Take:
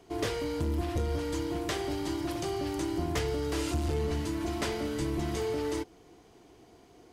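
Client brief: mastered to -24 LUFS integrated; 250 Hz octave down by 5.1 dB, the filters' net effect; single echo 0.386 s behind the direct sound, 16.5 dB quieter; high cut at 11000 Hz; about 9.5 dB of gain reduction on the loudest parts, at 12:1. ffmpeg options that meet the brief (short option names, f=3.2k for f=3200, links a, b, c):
-af "lowpass=11k,equalizer=f=250:t=o:g=-7.5,acompressor=threshold=-37dB:ratio=12,aecho=1:1:386:0.15,volume=17.5dB"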